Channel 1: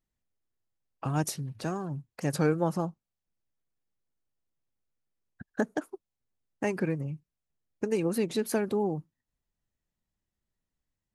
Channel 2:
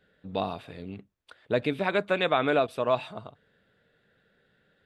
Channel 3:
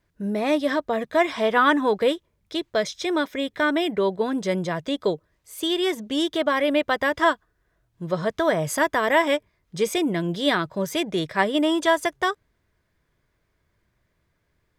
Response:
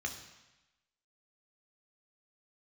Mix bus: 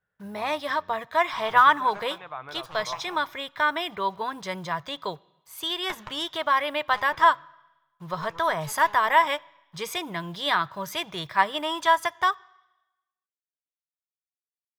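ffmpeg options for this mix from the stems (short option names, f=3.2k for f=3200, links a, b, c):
-filter_complex "[0:a]highpass=560,aeval=exprs='0.133*(cos(1*acos(clip(val(0)/0.133,-1,1)))-cos(1*PI/2))+0.0596*(cos(3*acos(clip(val(0)/0.133,-1,1)))-cos(3*PI/2))+0.0119*(cos(4*acos(clip(val(0)/0.133,-1,1)))-cos(4*PI/2))':c=same,adelay=300,volume=1dB,asplit=2[a][b];[b]volume=-9.5dB[c];[1:a]lowpass=2.6k,volume=-16.5dB[d];[2:a]highshelf=f=2k:g=9.5,acrusher=bits=7:mix=0:aa=0.5,volume=-7dB,asplit=2[e][f];[f]volume=-20.5dB[g];[3:a]atrim=start_sample=2205[h];[c][g]amix=inputs=2:normalize=0[i];[i][h]afir=irnorm=-1:irlink=0[j];[a][d][e][j]amix=inputs=4:normalize=0,equalizer=f=125:t=o:w=1:g=7,equalizer=f=250:t=o:w=1:g=-11,equalizer=f=500:t=o:w=1:g=-5,equalizer=f=1k:t=o:w=1:g=12,equalizer=f=8k:t=o:w=1:g=-8"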